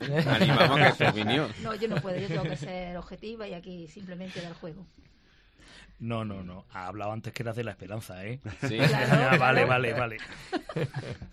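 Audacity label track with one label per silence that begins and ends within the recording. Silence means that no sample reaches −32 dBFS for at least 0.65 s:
4.680000	6.020000	silence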